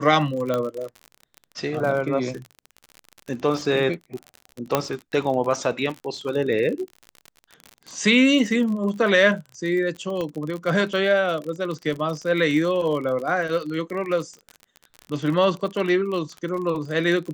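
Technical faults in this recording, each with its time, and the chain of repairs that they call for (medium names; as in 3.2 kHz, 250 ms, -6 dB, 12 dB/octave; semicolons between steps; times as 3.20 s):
crackle 40 per s -29 dBFS
0.54 s: pop -12 dBFS
4.75 s: pop -5 dBFS
10.21 s: pop -16 dBFS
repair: de-click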